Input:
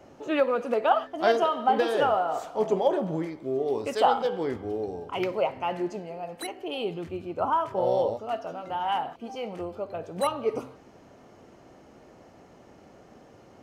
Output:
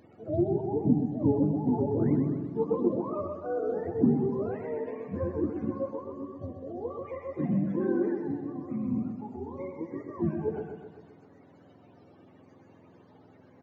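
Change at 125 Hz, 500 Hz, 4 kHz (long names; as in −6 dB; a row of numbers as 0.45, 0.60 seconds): +9.5 dB, −5.0 dB, below −30 dB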